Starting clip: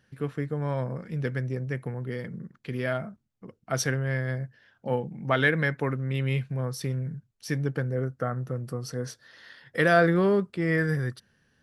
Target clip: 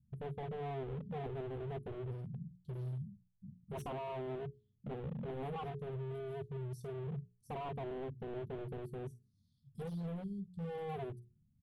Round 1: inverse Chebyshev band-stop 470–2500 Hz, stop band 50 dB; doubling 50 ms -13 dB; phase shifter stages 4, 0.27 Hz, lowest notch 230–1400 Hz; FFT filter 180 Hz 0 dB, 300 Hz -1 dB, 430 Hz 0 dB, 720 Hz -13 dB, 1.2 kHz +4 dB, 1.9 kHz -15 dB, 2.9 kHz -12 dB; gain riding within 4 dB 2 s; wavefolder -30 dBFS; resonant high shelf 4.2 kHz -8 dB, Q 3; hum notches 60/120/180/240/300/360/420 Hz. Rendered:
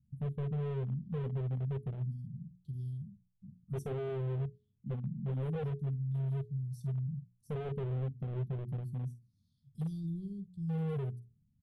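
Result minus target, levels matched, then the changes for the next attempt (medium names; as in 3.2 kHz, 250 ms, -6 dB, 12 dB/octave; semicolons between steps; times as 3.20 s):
wavefolder: distortion -22 dB
change: wavefolder -36 dBFS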